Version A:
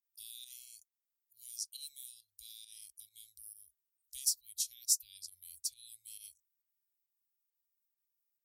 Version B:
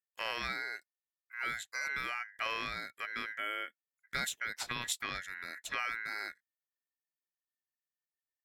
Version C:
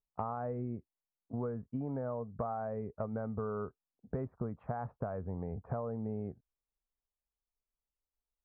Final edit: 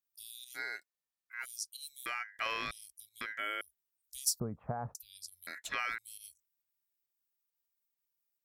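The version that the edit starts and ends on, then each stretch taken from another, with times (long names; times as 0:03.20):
A
0:00.57–0:01.43: punch in from B, crossfade 0.06 s
0:02.06–0:02.71: punch in from B
0:03.21–0:03.61: punch in from B
0:04.40–0:04.95: punch in from C
0:05.47–0:05.98: punch in from B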